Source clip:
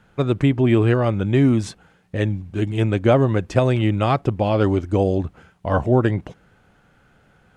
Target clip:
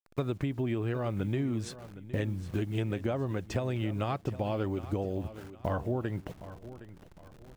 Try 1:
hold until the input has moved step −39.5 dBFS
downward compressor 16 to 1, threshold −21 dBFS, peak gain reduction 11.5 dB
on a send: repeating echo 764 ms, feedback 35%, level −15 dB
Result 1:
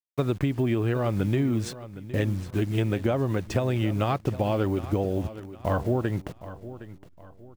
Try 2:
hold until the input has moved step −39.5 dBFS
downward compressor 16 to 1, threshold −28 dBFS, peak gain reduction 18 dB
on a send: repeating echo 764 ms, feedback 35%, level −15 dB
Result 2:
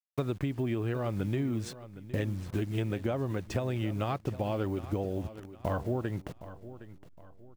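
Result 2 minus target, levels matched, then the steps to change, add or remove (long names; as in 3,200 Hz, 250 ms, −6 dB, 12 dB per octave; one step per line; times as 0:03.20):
hold until the input has moved: distortion +6 dB
change: hold until the input has moved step −46 dBFS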